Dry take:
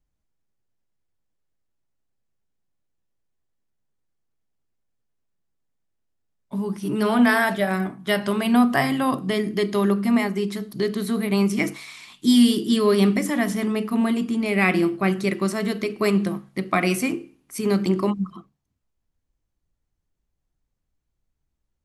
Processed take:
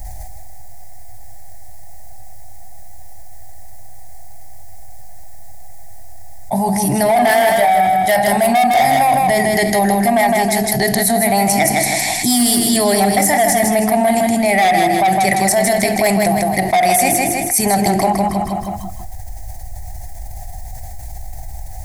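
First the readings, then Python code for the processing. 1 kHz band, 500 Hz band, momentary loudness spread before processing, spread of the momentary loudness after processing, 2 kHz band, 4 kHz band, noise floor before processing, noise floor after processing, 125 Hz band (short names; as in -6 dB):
+16.0 dB, +9.0 dB, 10 LU, 21 LU, +8.0 dB, +8.0 dB, -78 dBFS, -28 dBFS, +5.0 dB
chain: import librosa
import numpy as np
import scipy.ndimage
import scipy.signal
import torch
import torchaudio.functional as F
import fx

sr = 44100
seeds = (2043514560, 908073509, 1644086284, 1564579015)

p1 = fx.curve_eq(x, sr, hz=(110.0, 160.0, 460.0, 750.0, 1200.0, 1900.0, 2900.0, 4600.0, 10000.0), db=(0, -15, -19, 12, -27, -2, -18, -6, 3))
p2 = fx.level_steps(p1, sr, step_db=9)
p3 = p1 + (p2 * 10.0 ** (3.0 / 20.0))
p4 = 10.0 ** (-17.5 / 20.0) * np.tanh(p3 / 10.0 ** (-17.5 / 20.0))
p5 = p4 + fx.echo_feedback(p4, sr, ms=159, feedback_pct=32, wet_db=-6.0, dry=0)
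p6 = fx.env_flatten(p5, sr, amount_pct=70)
y = p6 * 10.0 ** (5.0 / 20.0)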